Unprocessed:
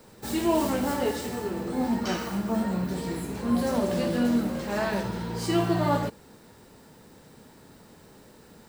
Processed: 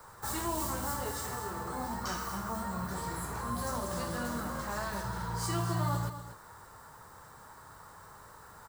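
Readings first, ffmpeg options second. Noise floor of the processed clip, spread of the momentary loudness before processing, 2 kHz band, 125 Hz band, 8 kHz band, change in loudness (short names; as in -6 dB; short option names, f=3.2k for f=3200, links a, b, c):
-53 dBFS, 7 LU, -4.5 dB, -3.5 dB, +0.5 dB, -8.0 dB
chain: -filter_complex "[0:a]firequalizer=gain_entry='entry(100,0);entry(230,-16);entry(350,-10);entry(1100,12);entry(2500,-8);entry(4600,-4);entry(7300,1)':delay=0.05:min_phase=1,acrossover=split=360|3000[a][b][c];[b]acompressor=threshold=-38dB:ratio=6[d];[a][d][c]amix=inputs=3:normalize=0,aecho=1:1:240:0.282"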